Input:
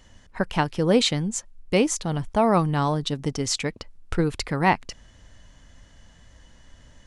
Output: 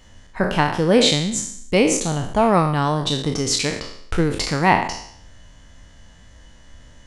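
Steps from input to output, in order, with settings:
peak hold with a decay on every bin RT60 0.66 s
level +2.5 dB

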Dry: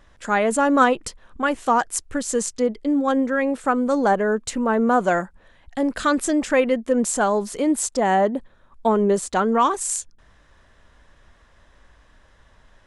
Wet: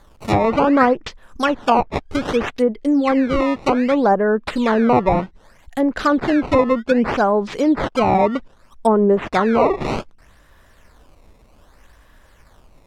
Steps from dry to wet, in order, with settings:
sample-and-hold swept by an LFO 16×, swing 160% 0.64 Hz
treble cut that deepens with the level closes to 1,300 Hz, closed at −15 dBFS
level +4 dB

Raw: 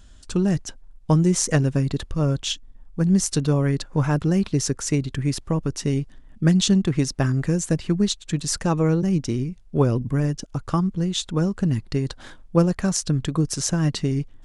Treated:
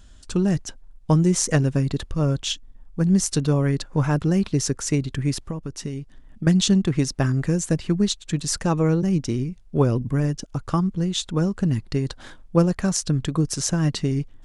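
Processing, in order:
0:05.37–0:06.47: downward compressor 4 to 1, threshold −28 dBFS, peak gain reduction 10 dB

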